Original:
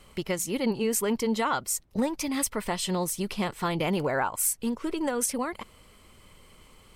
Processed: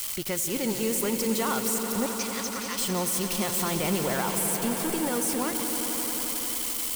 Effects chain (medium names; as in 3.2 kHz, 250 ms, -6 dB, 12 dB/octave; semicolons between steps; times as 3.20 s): zero-crossing glitches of -22 dBFS; 2.06–2.78 s: Chebyshev band-pass 1–6.4 kHz, order 5; peak limiter -20 dBFS, peak gain reduction 10.5 dB; echo with a slow build-up 88 ms, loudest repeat 5, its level -12 dB; trim -1 dB